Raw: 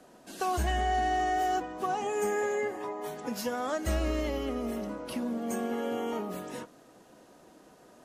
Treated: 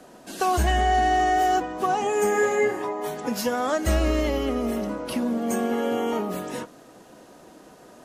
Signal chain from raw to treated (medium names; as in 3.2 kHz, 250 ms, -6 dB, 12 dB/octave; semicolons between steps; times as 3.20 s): 2.31–2.82 s: doubling 33 ms -3 dB; trim +7.5 dB